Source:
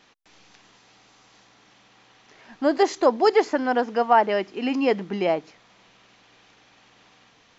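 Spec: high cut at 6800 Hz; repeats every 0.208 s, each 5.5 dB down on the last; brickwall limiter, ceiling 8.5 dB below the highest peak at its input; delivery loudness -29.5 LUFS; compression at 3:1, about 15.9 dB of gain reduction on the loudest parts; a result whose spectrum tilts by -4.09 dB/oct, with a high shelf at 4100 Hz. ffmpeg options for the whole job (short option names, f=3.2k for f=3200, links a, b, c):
-af "lowpass=6.8k,highshelf=f=4.1k:g=-6,acompressor=threshold=-35dB:ratio=3,alimiter=level_in=4.5dB:limit=-24dB:level=0:latency=1,volume=-4.5dB,aecho=1:1:208|416|624|832|1040|1248|1456:0.531|0.281|0.149|0.079|0.0419|0.0222|0.0118,volume=8dB"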